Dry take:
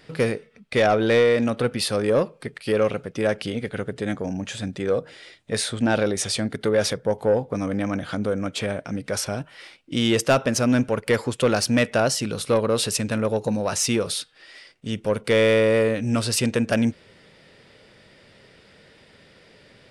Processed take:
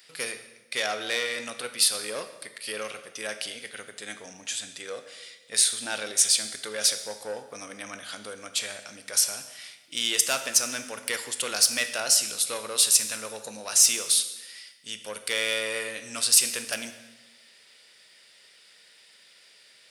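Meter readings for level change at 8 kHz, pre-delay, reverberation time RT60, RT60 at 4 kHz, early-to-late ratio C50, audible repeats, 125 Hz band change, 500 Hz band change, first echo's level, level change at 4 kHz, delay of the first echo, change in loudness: +8.0 dB, 17 ms, 1.2 s, 1.0 s, 10.5 dB, none, under -25 dB, -15.5 dB, none, +3.0 dB, none, -1.5 dB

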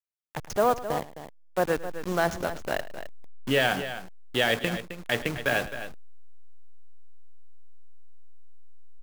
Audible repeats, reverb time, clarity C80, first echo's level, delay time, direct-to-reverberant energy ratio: 2, none, none, -17.0 dB, 0.107 s, none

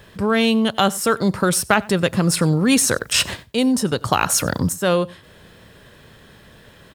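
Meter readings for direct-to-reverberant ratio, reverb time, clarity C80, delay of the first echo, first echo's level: none, none, none, 94 ms, -23.0 dB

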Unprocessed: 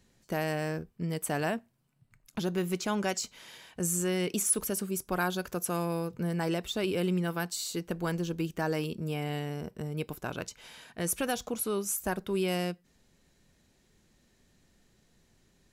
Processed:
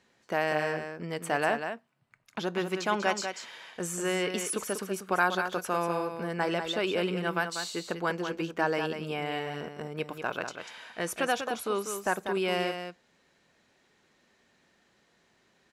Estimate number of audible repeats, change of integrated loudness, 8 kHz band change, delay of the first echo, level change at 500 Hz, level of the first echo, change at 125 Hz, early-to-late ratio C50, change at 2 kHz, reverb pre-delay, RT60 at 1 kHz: 1, +1.0 dB, -5.0 dB, 0.193 s, +2.5 dB, -7.5 dB, -5.5 dB, none, +6.5 dB, none, none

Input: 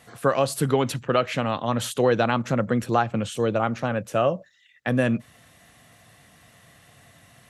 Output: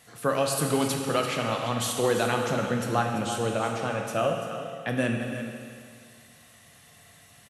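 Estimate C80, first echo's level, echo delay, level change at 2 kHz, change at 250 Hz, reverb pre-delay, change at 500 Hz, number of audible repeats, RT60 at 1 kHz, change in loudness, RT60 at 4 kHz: 3.5 dB, -11.5 dB, 0.339 s, -1.5 dB, -4.0 dB, 15 ms, -3.5 dB, 1, 2.1 s, -3.0 dB, 2.1 s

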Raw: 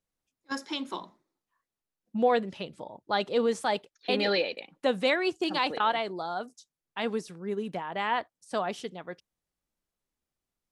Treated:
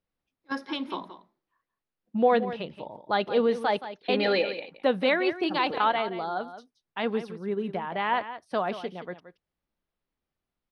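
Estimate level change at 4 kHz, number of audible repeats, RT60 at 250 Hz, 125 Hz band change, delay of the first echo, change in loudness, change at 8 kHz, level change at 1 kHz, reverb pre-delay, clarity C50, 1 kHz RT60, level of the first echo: -1.0 dB, 1, none, +2.5 dB, 0.174 s, +2.0 dB, under -10 dB, +2.5 dB, none, none, none, -12.5 dB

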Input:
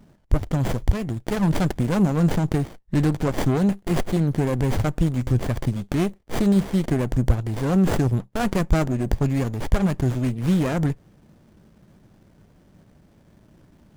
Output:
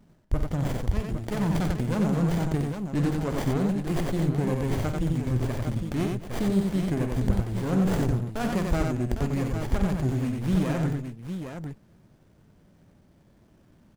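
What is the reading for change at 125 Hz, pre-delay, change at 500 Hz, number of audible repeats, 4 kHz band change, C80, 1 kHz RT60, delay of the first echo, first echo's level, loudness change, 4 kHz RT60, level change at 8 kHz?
-4.0 dB, none, -4.0 dB, 4, -4.0 dB, none, none, 48 ms, -10.0 dB, -4.5 dB, none, -4.0 dB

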